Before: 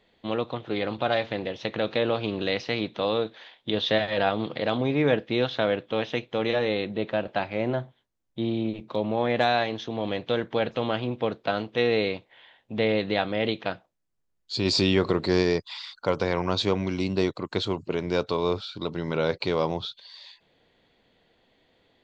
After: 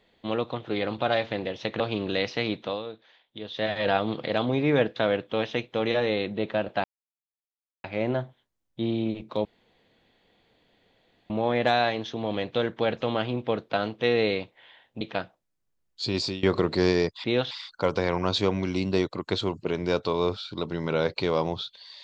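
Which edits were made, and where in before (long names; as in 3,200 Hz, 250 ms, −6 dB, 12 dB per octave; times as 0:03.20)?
0:01.80–0:02.12: remove
0:02.92–0:04.09: duck −11.5 dB, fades 0.23 s
0:05.28–0:05.55: move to 0:15.75
0:07.43: splice in silence 1.00 s
0:09.04: splice in room tone 1.85 s
0:12.75–0:13.52: remove
0:14.53–0:14.94: fade out, to −21 dB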